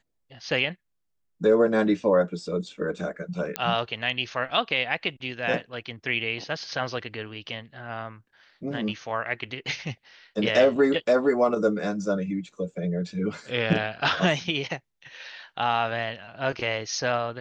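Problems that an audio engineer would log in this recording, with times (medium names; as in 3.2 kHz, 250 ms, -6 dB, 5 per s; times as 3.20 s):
3.56 s: pop -10 dBFS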